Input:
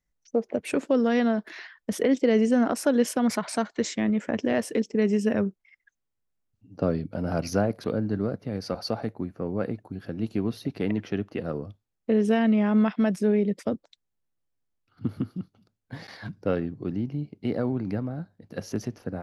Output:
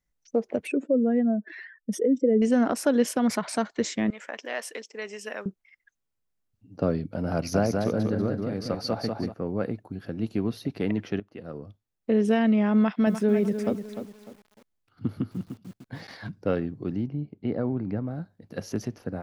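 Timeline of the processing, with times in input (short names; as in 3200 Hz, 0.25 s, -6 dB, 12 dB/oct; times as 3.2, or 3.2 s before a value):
0.67–2.42 spectral contrast raised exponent 2
4.1–5.46 HPF 860 Hz
7.35–9.34 feedback echo 0.189 s, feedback 34%, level -4 dB
11.2–12.16 fade in, from -15.5 dB
12.77–16.22 lo-fi delay 0.3 s, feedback 35%, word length 8-bit, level -9 dB
17.07–18.08 tape spacing loss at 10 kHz 23 dB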